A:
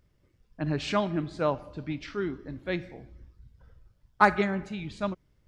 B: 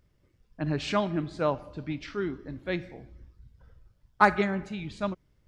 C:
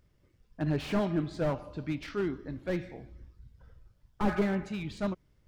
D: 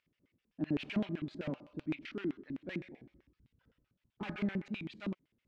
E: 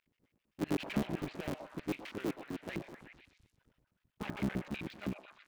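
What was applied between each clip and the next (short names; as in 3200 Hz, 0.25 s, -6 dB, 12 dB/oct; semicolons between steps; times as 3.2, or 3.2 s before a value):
nothing audible
slew limiter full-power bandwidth 29 Hz
LFO band-pass square 7.8 Hz 260–2600 Hz; gain +2 dB
cycle switcher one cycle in 3, muted; delay with a stepping band-pass 0.123 s, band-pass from 760 Hz, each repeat 0.7 oct, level -4.5 dB; gain +1.5 dB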